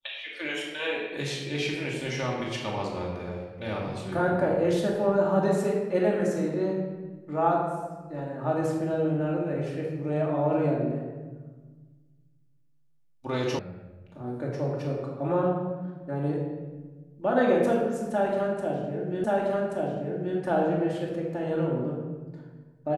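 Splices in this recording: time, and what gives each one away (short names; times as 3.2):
13.59 sound cut off
19.24 repeat of the last 1.13 s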